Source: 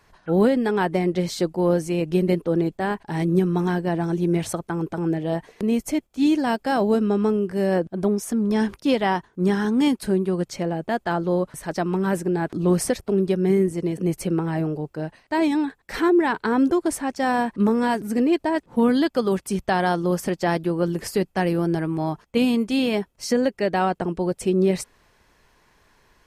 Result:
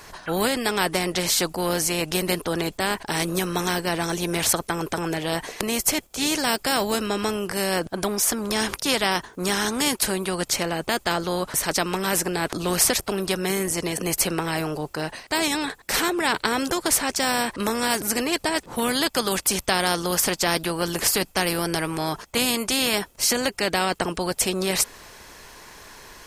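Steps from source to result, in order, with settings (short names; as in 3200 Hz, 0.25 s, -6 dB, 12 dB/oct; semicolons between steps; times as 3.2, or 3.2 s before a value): tone controls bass -5 dB, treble +7 dB; spectral compressor 2:1; gain +6 dB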